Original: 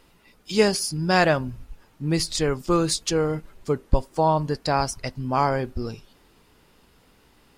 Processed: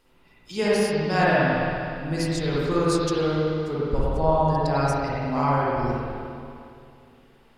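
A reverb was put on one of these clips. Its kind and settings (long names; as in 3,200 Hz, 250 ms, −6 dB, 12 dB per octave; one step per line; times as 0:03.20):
spring reverb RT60 2.5 s, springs 50/58 ms, chirp 55 ms, DRR −8.5 dB
level −8.5 dB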